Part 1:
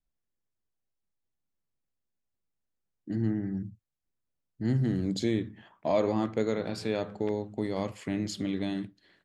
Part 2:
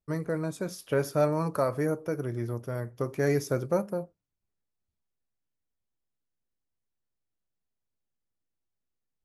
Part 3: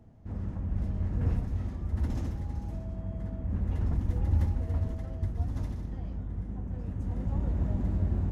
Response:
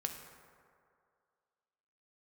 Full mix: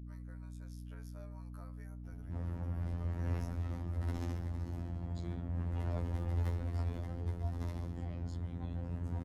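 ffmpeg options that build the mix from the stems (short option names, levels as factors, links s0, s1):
-filter_complex "[0:a]volume=0.106[s0];[1:a]highpass=910,acompressor=threshold=0.0141:ratio=2,volume=0.126,asplit=2[s1][s2];[s2]volume=0.106[s3];[2:a]equalizer=f=6500:t=o:w=0.45:g=-3.5,adelay=2050,volume=1.41[s4];[3:a]atrim=start_sample=2205[s5];[s3][s5]afir=irnorm=-1:irlink=0[s6];[s0][s1][s4][s6]amix=inputs=4:normalize=0,afftfilt=real='hypot(re,im)*cos(PI*b)':imag='0':win_size=2048:overlap=0.75,aeval=exprs='val(0)+0.00562*(sin(2*PI*60*n/s)+sin(2*PI*2*60*n/s)/2+sin(2*PI*3*60*n/s)/3+sin(2*PI*4*60*n/s)/4+sin(2*PI*5*60*n/s)/5)':c=same,acrossover=split=390[s7][s8];[s7]acompressor=threshold=0.0112:ratio=2[s9];[s9][s8]amix=inputs=2:normalize=0"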